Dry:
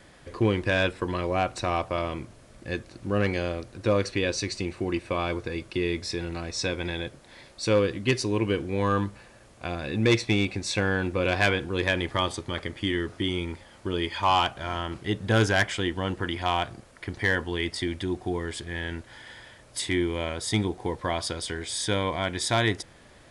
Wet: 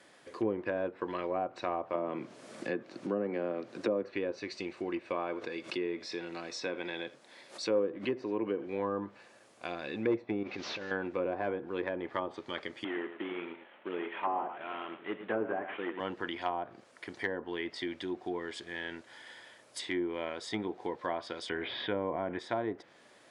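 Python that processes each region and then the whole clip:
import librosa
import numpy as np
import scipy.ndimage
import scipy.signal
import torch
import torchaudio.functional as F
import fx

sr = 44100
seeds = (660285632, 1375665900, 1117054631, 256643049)

y = fx.chain(x, sr, fx.highpass(hz=140.0, slope=24),
    fx.low_shelf(hz=350.0, db=5.5),
    fx.band_squash(depth_pct=70), at=(1.94, 4.04))
y = fx.chain(y, sr, fx.highpass(hz=130.0, slope=12),
    fx.echo_single(ms=83, db=-20.5),
    fx.pre_swell(db_per_s=140.0), at=(5.14, 8.67))
y = fx.chain(y, sr, fx.delta_mod(bps=32000, step_db=-40.5),
    fx.over_compress(threshold_db=-31.0, ratio=-1.0),
    fx.high_shelf(hz=5000.0, db=8.5), at=(10.43, 10.91))
y = fx.chain(y, sr, fx.cvsd(bps=16000),
    fx.highpass(hz=210.0, slope=12),
    fx.echo_single(ms=107, db=-11.0), at=(12.84, 16.0))
y = fx.chain(y, sr, fx.steep_lowpass(hz=3200.0, slope=36),
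    fx.low_shelf(hz=150.0, db=5.0),
    fx.env_flatten(amount_pct=50), at=(21.49, 22.39))
y = scipy.signal.sosfilt(scipy.signal.butter(2, 280.0, 'highpass', fs=sr, output='sos'), y)
y = fx.env_lowpass_down(y, sr, base_hz=770.0, full_db=-22.0)
y = y * librosa.db_to_amplitude(-5.0)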